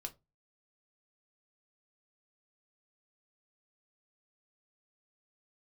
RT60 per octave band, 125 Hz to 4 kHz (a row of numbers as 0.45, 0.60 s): 0.40, 0.30, 0.25, 0.20, 0.15, 0.15 s